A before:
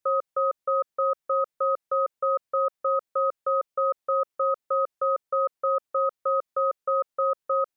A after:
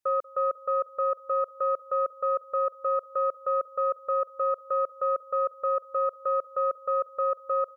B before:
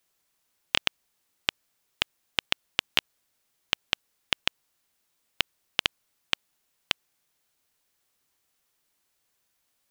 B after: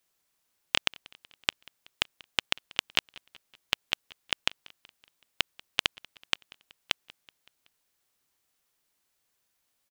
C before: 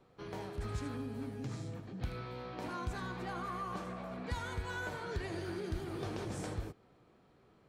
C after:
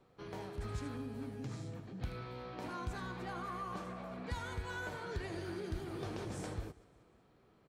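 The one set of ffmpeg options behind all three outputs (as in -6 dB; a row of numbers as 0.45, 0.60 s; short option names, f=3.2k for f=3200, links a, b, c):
-af "aecho=1:1:188|376|564|752:0.0708|0.0396|0.0222|0.0124,aeval=exprs='0.891*(cos(1*acos(clip(val(0)/0.891,-1,1)))-cos(1*PI/2))+0.0708*(cos(2*acos(clip(val(0)/0.891,-1,1)))-cos(2*PI/2))+0.0447*(cos(4*acos(clip(val(0)/0.891,-1,1)))-cos(4*PI/2))+0.0224*(cos(5*acos(clip(val(0)/0.891,-1,1)))-cos(5*PI/2))+0.0158*(cos(7*acos(clip(val(0)/0.891,-1,1)))-cos(7*PI/2))':c=same,volume=-2dB"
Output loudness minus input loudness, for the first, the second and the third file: -2.0, -1.5, -2.0 LU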